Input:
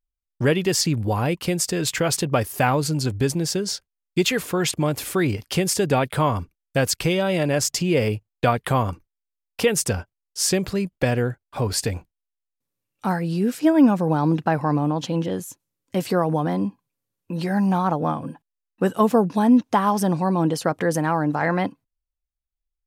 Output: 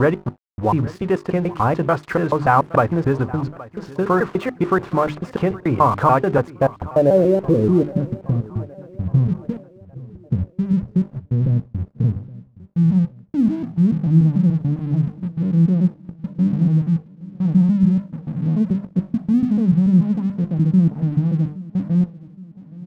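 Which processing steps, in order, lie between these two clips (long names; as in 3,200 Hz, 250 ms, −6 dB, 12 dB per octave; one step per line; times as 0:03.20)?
slices reordered back to front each 145 ms, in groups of 4
mains-hum notches 50/100/150/200/250/300/350/400 Hz
in parallel at −0.5 dB: brickwall limiter −15 dBFS, peak gain reduction 9.5 dB
on the sum: low-pass filter sweep 1,200 Hz → 170 Hz, 0:06.33–0:08.34
dead-zone distortion −38 dBFS
repeating echo 819 ms, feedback 50%, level −20 dB
level −1 dB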